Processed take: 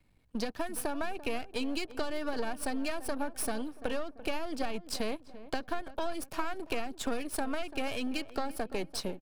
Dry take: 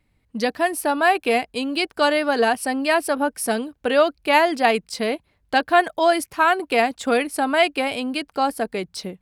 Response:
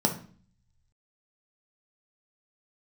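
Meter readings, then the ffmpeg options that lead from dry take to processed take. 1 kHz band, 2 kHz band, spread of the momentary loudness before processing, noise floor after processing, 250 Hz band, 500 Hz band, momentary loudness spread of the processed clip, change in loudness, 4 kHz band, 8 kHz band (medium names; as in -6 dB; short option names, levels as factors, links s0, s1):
-18.5 dB, -18.0 dB, 8 LU, -55 dBFS, -11.0 dB, -16.0 dB, 3 LU, -15.5 dB, -13.5 dB, -9.0 dB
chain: -filter_complex "[0:a]aeval=exprs='if(lt(val(0),0),0.251*val(0),val(0))':c=same,acrossover=split=270[s0][s1];[s1]acompressor=threshold=0.0447:ratio=6[s2];[s0][s2]amix=inputs=2:normalize=0,bandreject=f=2000:w=9.6,acompressor=threshold=0.0316:ratio=6,asplit=2[s3][s4];[s4]adelay=340,lowpass=f=1300:p=1,volume=0.188,asplit=2[s5][s6];[s6]adelay=340,lowpass=f=1300:p=1,volume=0.47,asplit=2[s7][s8];[s8]adelay=340,lowpass=f=1300:p=1,volume=0.47,asplit=2[s9][s10];[s10]adelay=340,lowpass=f=1300:p=1,volume=0.47[s11];[s5][s7][s9][s11]amix=inputs=4:normalize=0[s12];[s3][s12]amix=inputs=2:normalize=0"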